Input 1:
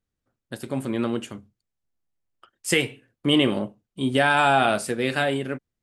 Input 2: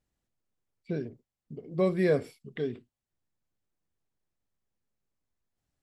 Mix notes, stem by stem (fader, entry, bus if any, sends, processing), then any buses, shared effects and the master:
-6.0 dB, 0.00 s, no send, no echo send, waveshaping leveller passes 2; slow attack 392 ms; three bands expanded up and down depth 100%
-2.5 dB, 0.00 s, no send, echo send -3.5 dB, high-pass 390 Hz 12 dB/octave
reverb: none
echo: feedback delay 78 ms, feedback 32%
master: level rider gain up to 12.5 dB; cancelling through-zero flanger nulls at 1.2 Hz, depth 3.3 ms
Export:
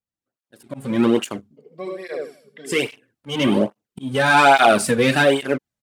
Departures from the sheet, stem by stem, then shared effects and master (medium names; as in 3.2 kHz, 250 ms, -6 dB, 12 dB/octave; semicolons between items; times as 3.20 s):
stem 1: missing three bands expanded up and down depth 100%; stem 2 -2.5 dB -> -11.0 dB